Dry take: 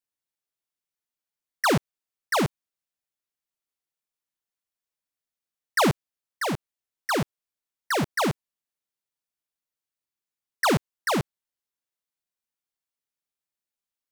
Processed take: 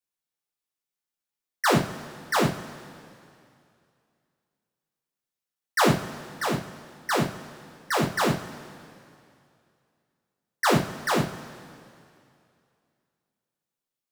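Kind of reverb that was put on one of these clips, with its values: two-slope reverb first 0.31 s, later 2.5 s, from -18 dB, DRR -1 dB; trim -3 dB

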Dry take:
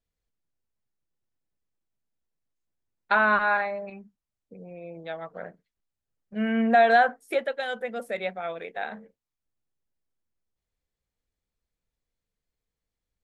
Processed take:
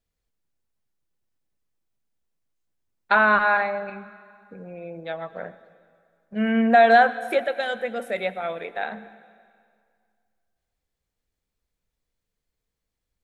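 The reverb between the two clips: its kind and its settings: plate-style reverb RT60 2.1 s, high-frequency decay 0.9×, pre-delay 75 ms, DRR 15.5 dB; trim +3.5 dB

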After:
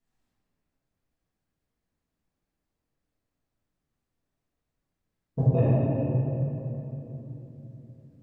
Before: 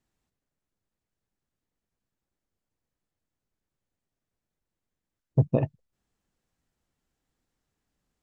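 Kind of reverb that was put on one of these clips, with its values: simulated room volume 210 m³, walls hard, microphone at 1.7 m; trim -8 dB

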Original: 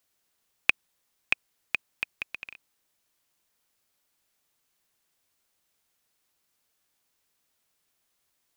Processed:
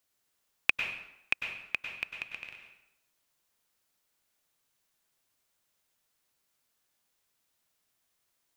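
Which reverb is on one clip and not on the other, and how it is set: plate-style reverb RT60 0.82 s, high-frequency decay 0.8×, pre-delay 90 ms, DRR 3.5 dB; trim -3.5 dB

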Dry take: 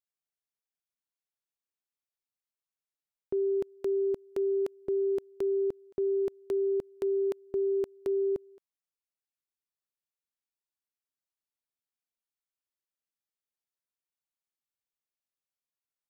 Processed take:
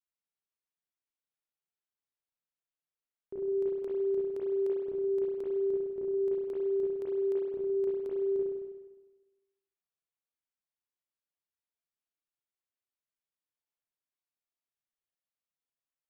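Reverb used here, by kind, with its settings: spring tank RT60 1.2 s, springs 32/51 ms, chirp 30 ms, DRR -6.5 dB; trim -10.5 dB

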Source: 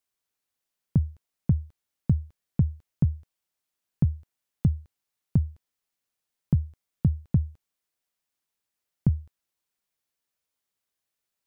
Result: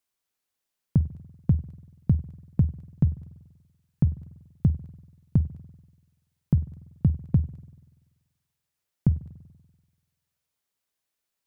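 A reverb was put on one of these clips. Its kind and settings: spring tank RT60 1.3 s, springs 48 ms, chirp 55 ms, DRR 16 dB; trim +1 dB

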